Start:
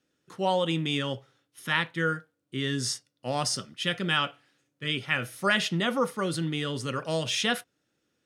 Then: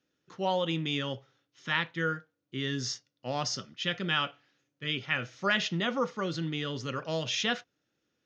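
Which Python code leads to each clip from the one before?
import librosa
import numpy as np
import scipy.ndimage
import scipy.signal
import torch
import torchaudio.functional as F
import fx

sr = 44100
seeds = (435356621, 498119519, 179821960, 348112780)

y = scipy.signal.sosfilt(scipy.signal.ellip(4, 1.0, 40, 6500.0, 'lowpass', fs=sr, output='sos'), x)
y = y * 10.0 ** (-2.5 / 20.0)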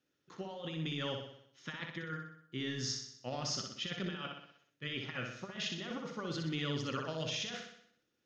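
y = fx.over_compress(x, sr, threshold_db=-33.0, ratio=-0.5)
y = fx.echo_feedback(y, sr, ms=62, feedback_pct=53, wet_db=-5)
y = y * 10.0 ** (-6.5 / 20.0)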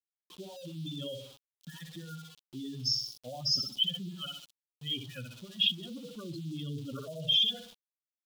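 y = fx.spec_expand(x, sr, power=3.2)
y = np.where(np.abs(y) >= 10.0 ** (-53.5 / 20.0), y, 0.0)
y = fx.high_shelf_res(y, sr, hz=2500.0, db=9.5, q=3.0)
y = y * 10.0 ** (-1.0 / 20.0)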